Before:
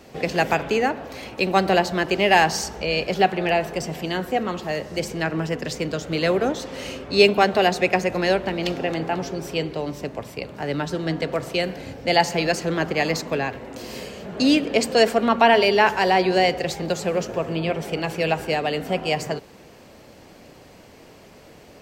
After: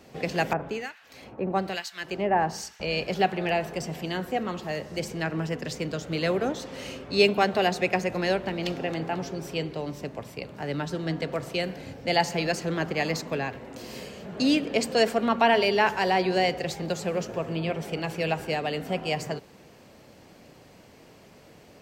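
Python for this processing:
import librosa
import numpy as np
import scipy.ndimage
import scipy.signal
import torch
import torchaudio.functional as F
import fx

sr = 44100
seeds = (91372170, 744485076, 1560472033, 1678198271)

y = fx.low_shelf(x, sr, hz=370.0, db=-4.5)
y = fx.harmonic_tremolo(y, sr, hz=1.1, depth_pct=100, crossover_hz=1500.0, at=(0.53, 2.8))
y = fx.peak_eq(y, sr, hz=140.0, db=6.0, octaves=2.0)
y = y * librosa.db_to_amplitude(-5.0)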